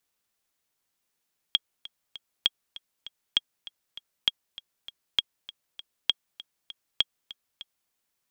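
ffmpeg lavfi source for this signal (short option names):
-f lavfi -i "aevalsrc='pow(10,(-7.5-19*gte(mod(t,3*60/198),60/198))/20)*sin(2*PI*3280*mod(t,60/198))*exp(-6.91*mod(t,60/198)/0.03)':d=6.36:s=44100"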